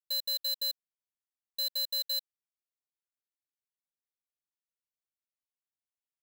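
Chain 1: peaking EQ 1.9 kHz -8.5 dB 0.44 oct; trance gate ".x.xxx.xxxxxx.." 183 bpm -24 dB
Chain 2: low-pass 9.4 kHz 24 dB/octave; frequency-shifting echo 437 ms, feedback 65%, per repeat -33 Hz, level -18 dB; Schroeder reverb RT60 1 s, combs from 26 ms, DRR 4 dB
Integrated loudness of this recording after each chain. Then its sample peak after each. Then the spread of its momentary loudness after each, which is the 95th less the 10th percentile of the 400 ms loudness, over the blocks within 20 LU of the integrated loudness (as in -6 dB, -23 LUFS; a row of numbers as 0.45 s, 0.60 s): -32.5 LUFS, -32.5 LUFS; -29.0 dBFS, -25.5 dBFS; 6 LU, 18 LU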